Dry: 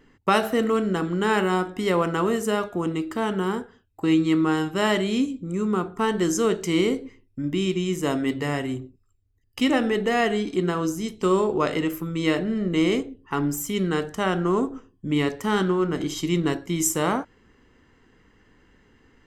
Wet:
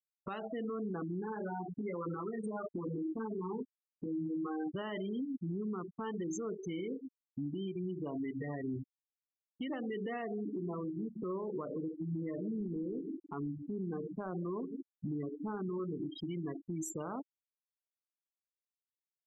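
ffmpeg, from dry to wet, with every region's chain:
ffmpeg -i in.wav -filter_complex "[0:a]asettb=1/sr,asplit=3[link_01][link_02][link_03];[link_01]atrim=end=1.204[link_04];[link_02]atrim=start=1.2:end=4.75,asetpts=PTS-STARTPTS,afade=type=in:duration=0.004:curve=qsin,afade=type=out:start_time=3.546:duration=0.004:curve=qsin,highpass=frequency=140:poles=1,acompressor=threshold=-25dB:ratio=4:attack=3.2:release=140:knee=1:detection=peak,asplit=2[link_05][link_06];[link_06]adelay=23,volume=-3dB[link_07];[link_05][link_07]amix=inputs=2:normalize=0,atrim=end_sample=156555[link_08];[link_03]atrim=start=4.746[link_09];[link_04][link_08]acrossfade=duration=0.004:curve1=hsin:curve2=qsin[link_10];[link_10][link_09]acrossfade=duration=0.004:curve1=qsin:curve2=hsin,asettb=1/sr,asplit=3[link_11][link_12][link_13];[link_11]atrim=end=10.224[link_14];[link_12]atrim=start=10.22:end=15.8,asetpts=PTS-STARTPTS,afade=type=in:duration=0.004:curve=qsin,afade=type=out:start_time=5.576:duration=0.004:curve=qsin,adynamicsmooth=sensitivity=0.5:basefreq=1100,asplit=2[link_15][link_16];[link_16]adelay=157,lowpass=frequency=920:poles=1,volume=-13dB,asplit=2[link_17][link_18];[link_18]adelay=157,lowpass=frequency=920:poles=1,volume=0.49,asplit=2[link_19][link_20];[link_20]adelay=157,lowpass=frequency=920:poles=1,volume=0.49,asplit=2[link_21][link_22];[link_22]adelay=157,lowpass=frequency=920:poles=1,volume=0.49,asplit=2[link_23][link_24];[link_24]adelay=157,lowpass=frequency=920:poles=1,volume=0.49[link_25];[link_15][link_17][link_19][link_21][link_23][link_25]amix=inputs=6:normalize=0,atrim=end_sample=246078[link_26];[link_13]atrim=start=15.796[link_27];[link_14][link_26]acrossfade=duration=0.004:curve1=hsin:curve2=qsin[link_28];[link_28][link_27]acrossfade=duration=0.004:curve1=qsin:curve2=hsin,afftfilt=real='re*gte(hypot(re,im),0.112)':imag='im*gte(hypot(re,im),0.112)':win_size=1024:overlap=0.75,acompressor=threshold=-33dB:ratio=6,alimiter=level_in=9dB:limit=-24dB:level=0:latency=1:release=76,volume=-9dB,volume=1.5dB" out.wav

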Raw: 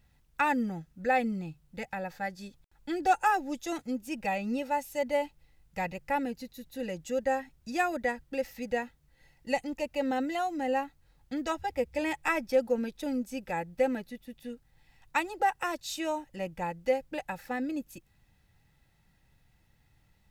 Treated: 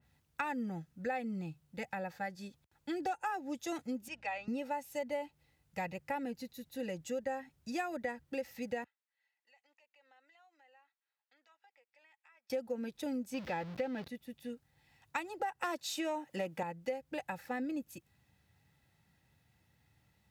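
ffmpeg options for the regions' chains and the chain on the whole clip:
ffmpeg -i in.wav -filter_complex "[0:a]asettb=1/sr,asplit=3[link_01][link_02][link_03];[link_01]atrim=end=4.084[link_04];[link_02]atrim=start=4.08:end=4.48,asetpts=PTS-STARTPTS,afade=type=in:duration=0.004:curve=qsin,afade=type=out:start_time=0.396:duration=0.004:curve=qsin,highpass=800,lowpass=4900,aeval=exprs='val(0)+0.001*(sin(2*PI*60*n/s)+sin(2*PI*2*60*n/s)/2+sin(2*PI*3*60*n/s)/3+sin(2*PI*4*60*n/s)/4+sin(2*PI*5*60*n/s)/5)':channel_layout=same[link_05];[link_03]atrim=start=4.476[link_06];[link_04][link_05]acrossfade=duration=0.004:curve1=hsin:curve2=qsin[link_07];[link_07][link_06]acrossfade=duration=0.004:curve1=qsin:curve2=hsin,asettb=1/sr,asplit=3[link_08][link_09][link_10];[link_08]atrim=end=8.844[link_11];[link_09]atrim=start=8.84:end=12.5,asetpts=PTS-STARTPTS,afade=type=in:duration=0.004:curve=qsin,afade=type=out:start_time=3.656:duration=0.004:curve=qsin,aderivative,acompressor=threshold=-56dB:ratio=6:attack=3.2:release=140:knee=1:detection=peak,highpass=610,lowpass=2100[link_12];[link_10]atrim=start=12.496[link_13];[link_11][link_12]acrossfade=duration=0.004:curve1=hsin:curve2=qsin[link_14];[link_14][link_13]acrossfade=duration=0.004:curve1=qsin:curve2=hsin,asettb=1/sr,asplit=3[link_15][link_16][link_17];[link_15]atrim=end=13.344[link_18];[link_16]atrim=start=13.34:end=14.08,asetpts=PTS-STARTPTS,afade=type=in:duration=0.004:curve=qsin,afade=type=out:start_time=0.736:duration=0.004:curve=qsin,aeval=exprs='val(0)+0.5*0.0112*sgn(val(0))':channel_layout=same,highshelf=frequency=6200:width_type=q:width=1.5:gain=-11[link_19];[link_17]atrim=start=14.076[link_20];[link_18][link_19]acrossfade=duration=0.004:curve1=hsin:curve2=qsin[link_21];[link_21][link_20]acrossfade=duration=0.004:curve1=qsin:curve2=hsin,asettb=1/sr,asplit=3[link_22][link_23][link_24];[link_22]atrim=end=15.634[link_25];[link_23]atrim=start=15.63:end=16.63,asetpts=PTS-STARTPTS,afade=type=in:duration=0.004:curve=qsin,afade=type=out:start_time=0.996:duration=0.004:curve=qsin,highpass=200,aeval=exprs='0.112*sin(PI/2*1.58*val(0)/0.112)':channel_layout=same[link_26];[link_24]atrim=start=16.626[link_27];[link_25][link_26]acrossfade=duration=0.004:curve1=hsin:curve2=qsin[link_28];[link_28][link_27]acrossfade=duration=0.004:curve1=qsin:curve2=hsin,highpass=frequency=70:width=0.5412,highpass=frequency=70:width=1.3066,acompressor=threshold=-31dB:ratio=6,adynamicequalizer=threshold=0.00355:dfrequency=2800:dqfactor=0.7:tfrequency=2800:tqfactor=0.7:attack=5:release=100:ratio=0.375:range=2.5:mode=cutabove:tftype=highshelf,volume=-2.5dB" out.wav

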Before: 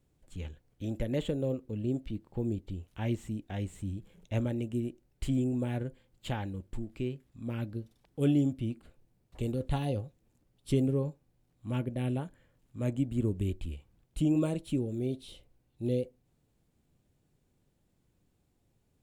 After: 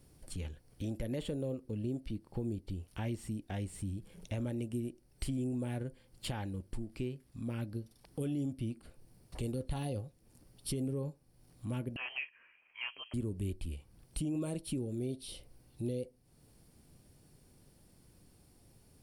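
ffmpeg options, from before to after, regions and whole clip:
ffmpeg -i in.wav -filter_complex "[0:a]asettb=1/sr,asplit=3[link_01][link_02][link_03];[link_01]atrim=end=11.964[link_04];[link_02]atrim=start=11.96:end=13.14,asetpts=PTS-STARTPTS,afade=type=in:duration=0.004:curve=qsin,afade=type=out:start_time=1.176:duration=0.004:curve=qsin,highpass=frequency=960:width_type=q:width=5.8,lowpass=frequency=2900:width_type=q:width=0.5098,lowpass=frequency=2900:width_type=q:width=0.6013,lowpass=frequency=2900:width_type=q:width=0.9,lowpass=frequency=2900:width_type=q:width=2.563,afreqshift=-3400[link_05];[link_03]atrim=start=13.136[link_06];[link_04][link_05]acrossfade=duration=0.004:curve1=hsin:curve2=qsin[link_07];[link_07][link_06]acrossfade=duration=0.004:curve1=qsin:curve2=hsin,superequalizer=14b=2.24:16b=3.16,alimiter=limit=-23dB:level=0:latency=1:release=30,acompressor=threshold=-55dB:ratio=2,volume=9.5dB" out.wav

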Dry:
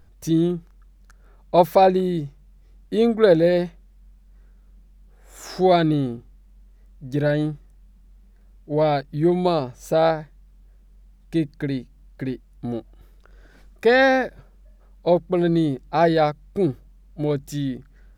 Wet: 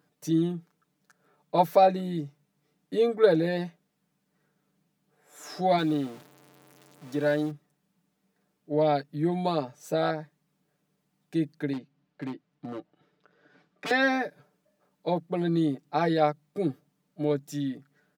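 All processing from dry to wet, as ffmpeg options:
ffmpeg -i in.wav -filter_complex "[0:a]asettb=1/sr,asplit=3[link_01][link_02][link_03];[link_01]atrim=end=5.784[link_04];[link_02]atrim=start=5.78:end=7.51,asetpts=PTS-STARTPTS,afade=type=in:duration=0.004:curve=qsin,afade=type=out:start_time=1.726:duration=0.004:curve=qsin,aeval=exprs='val(0)+0.5*0.02*sgn(val(0))':channel_layout=same,lowshelf=frequency=210:gain=-8[link_05];[link_03]atrim=start=7.506[link_06];[link_04][link_05]acrossfade=duration=0.004:curve1=hsin:curve2=qsin[link_07];[link_07][link_06]acrossfade=duration=0.004:curve1=qsin:curve2=hsin,asettb=1/sr,asplit=3[link_08][link_09][link_10];[link_08]atrim=end=11.734[link_11];[link_09]atrim=start=11.73:end=13.91,asetpts=PTS-STARTPTS,afade=type=in:duration=0.004:curve=qsin,afade=type=out:start_time=2.176:duration=0.004:curve=qsin,lowpass=4000,aeval=exprs='0.0794*(abs(mod(val(0)/0.0794+3,4)-2)-1)':channel_layout=same[link_12];[link_10]atrim=start=13.906[link_13];[link_11][link_12]acrossfade=duration=0.004:curve1=hsin:curve2=qsin[link_14];[link_14][link_13]acrossfade=duration=0.004:curve1=qsin:curve2=hsin,highpass=frequency=160:width=0.5412,highpass=frequency=160:width=1.3066,aecho=1:1:6.8:0.71,volume=-7.5dB" out.wav

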